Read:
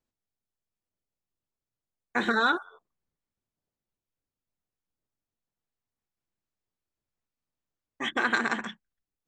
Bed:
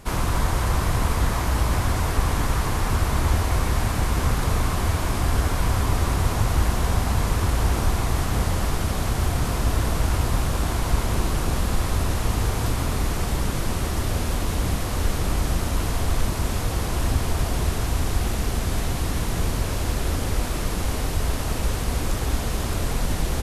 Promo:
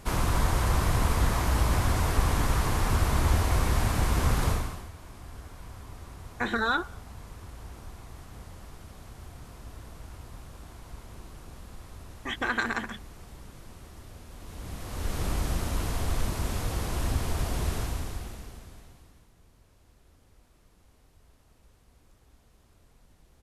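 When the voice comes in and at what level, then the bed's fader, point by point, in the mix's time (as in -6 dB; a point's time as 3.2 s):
4.25 s, -2.5 dB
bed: 4.49 s -3 dB
4.91 s -22.5 dB
14.29 s -22.5 dB
15.22 s -6 dB
17.79 s -6 dB
19.34 s -36 dB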